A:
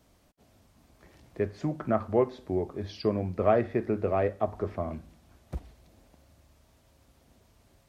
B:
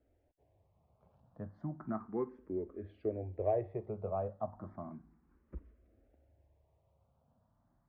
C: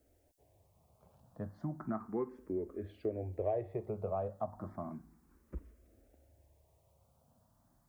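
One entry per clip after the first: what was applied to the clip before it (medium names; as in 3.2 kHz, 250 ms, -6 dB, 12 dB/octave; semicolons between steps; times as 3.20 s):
low-pass 1.2 kHz 12 dB/octave; barber-pole phaser +0.33 Hz; trim -7.5 dB
tone controls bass -1 dB, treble +13 dB; compression 2:1, threshold -38 dBFS, peak gain reduction 6.5 dB; trim +3.5 dB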